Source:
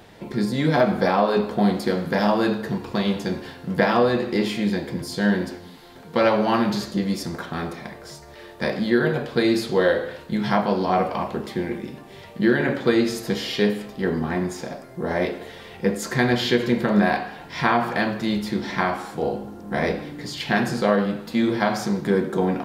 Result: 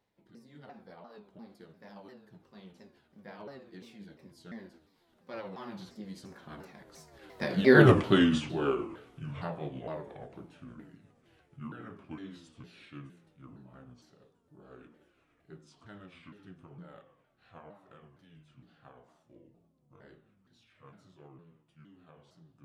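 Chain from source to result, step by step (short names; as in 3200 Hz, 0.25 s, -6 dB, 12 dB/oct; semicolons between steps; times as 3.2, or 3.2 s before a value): repeated pitch sweeps -5.5 st, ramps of 0.404 s; Doppler pass-by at 7.88, 48 m/s, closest 5 m; gain +7 dB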